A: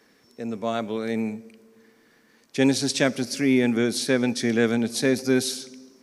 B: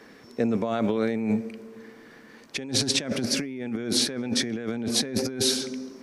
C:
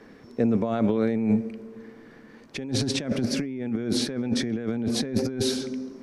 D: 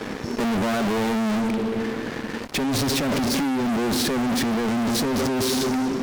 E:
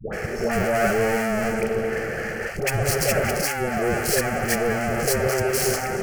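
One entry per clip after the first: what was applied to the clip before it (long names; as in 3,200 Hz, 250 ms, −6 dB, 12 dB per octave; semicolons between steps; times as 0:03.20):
high-shelf EQ 4,300 Hz −10.5 dB; compressor whose output falls as the input rises −32 dBFS, ratio −1; level +4 dB
spectral tilt −2 dB per octave; level −1.5 dB
fuzz pedal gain 45 dB, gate −52 dBFS; level −8.5 dB
phaser with its sweep stopped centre 1,000 Hz, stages 6; all-pass dispersion highs, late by 129 ms, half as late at 680 Hz; level +6.5 dB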